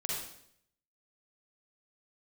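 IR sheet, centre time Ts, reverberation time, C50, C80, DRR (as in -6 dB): 66 ms, 0.70 s, -1.5 dB, 3.0 dB, -4.5 dB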